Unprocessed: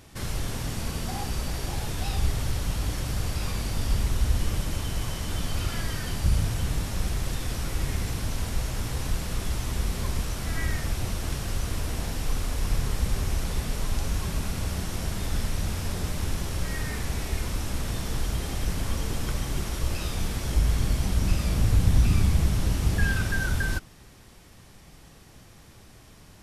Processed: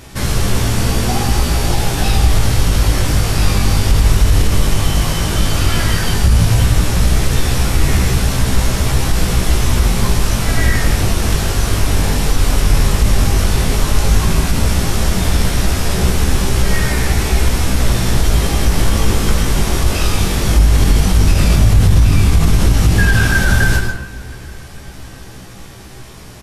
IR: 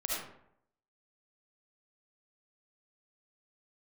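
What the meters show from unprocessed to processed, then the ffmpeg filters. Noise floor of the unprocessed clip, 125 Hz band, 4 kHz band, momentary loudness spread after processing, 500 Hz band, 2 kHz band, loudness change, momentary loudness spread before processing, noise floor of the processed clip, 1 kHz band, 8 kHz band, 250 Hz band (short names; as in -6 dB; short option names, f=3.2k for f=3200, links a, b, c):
-51 dBFS, +13.5 dB, +14.5 dB, 4 LU, +15.5 dB, +14.5 dB, +14.0 dB, 6 LU, -33 dBFS, +15.5 dB, +14.5 dB, +14.5 dB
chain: -filter_complex "[0:a]asplit=2[a][b];[b]adelay=721,lowpass=f=2k:p=1,volume=-22.5dB,asplit=2[c][d];[d]adelay=721,lowpass=f=2k:p=1,volume=0.51,asplit=2[e][f];[f]adelay=721,lowpass=f=2k:p=1,volume=0.51[g];[a][c][e][g]amix=inputs=4:normalize=0,asplit=2[h][i];[1:a]atrim=start_sample=2205,afade=t=out:st=0.23:d=0.01,atrim=end_sample=10584,asetrate=27342,aresample=44100[j];[i][j]afir=irnorm=-1:irlink=0,volume=-9.5dB[k];[h][k]amix=inputs=2:normalize=0,flanger=delay=15.5:depth=4.8:speed=0.12,alimiter=level_in=15.5dB:limit=-1dB:release=50:level=0:latency=1,volume=-1dB"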